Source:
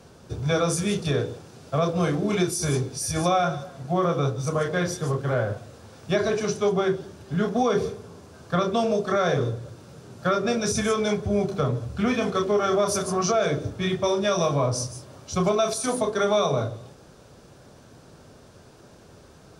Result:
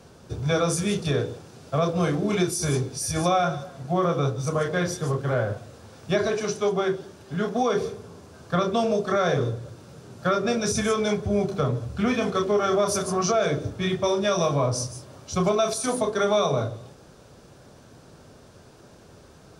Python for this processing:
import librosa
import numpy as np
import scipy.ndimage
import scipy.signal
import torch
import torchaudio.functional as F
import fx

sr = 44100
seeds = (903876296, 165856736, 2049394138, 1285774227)

y = fx.low_shelf(x, sr, hz=180.0, db=-7.0, at=(6.27, 7.93))